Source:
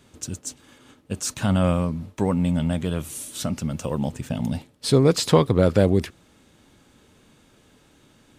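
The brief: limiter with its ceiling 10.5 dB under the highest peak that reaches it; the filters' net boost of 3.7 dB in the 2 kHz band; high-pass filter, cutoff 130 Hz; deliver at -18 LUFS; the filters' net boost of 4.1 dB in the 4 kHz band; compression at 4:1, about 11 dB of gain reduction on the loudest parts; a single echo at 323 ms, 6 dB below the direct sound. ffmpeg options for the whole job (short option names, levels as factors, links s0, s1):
-af "highpass=130,equalizer=f=2000:t=o:g=4,equalizer=f=4000:t=o:g=4,acompressor=threshold=0.0562:ratio=4,alimiter=limit=0.0841:level=0:latency=1,aecho=1:1:323:0.501,volume=5.31"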